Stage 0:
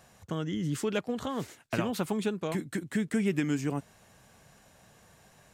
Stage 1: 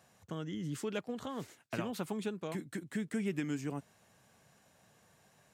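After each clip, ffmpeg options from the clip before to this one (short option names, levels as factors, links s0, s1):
-af "highpass=89,volume=0.447"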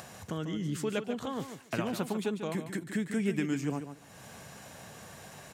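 -af "acompressor=mode=upward:threshold=0.00891:ratio=2.5,aecho=1:1:144|288:0.335|0.0536,volume=1.68"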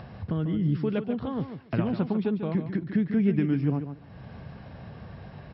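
-af "aemphasis=mode=reproduction:type=riaa" -ar 44100 -c:a mp2 -b:a 48k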